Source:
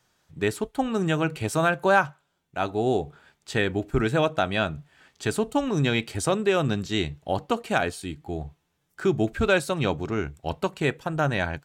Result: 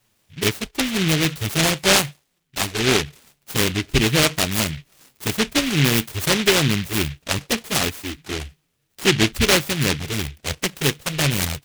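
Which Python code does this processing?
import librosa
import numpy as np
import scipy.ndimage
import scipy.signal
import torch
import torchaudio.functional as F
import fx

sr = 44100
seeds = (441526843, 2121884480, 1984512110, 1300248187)

y = fx.env_flanger(x, sr, rest_ms=9.6, full_db=-18.5)
y = fx.noise_mod_delay(y, sr, seeds[0], noise_hz=2500.0, depth_ms=0.34)
y = y * librosa.db_to_amplitude(6.5)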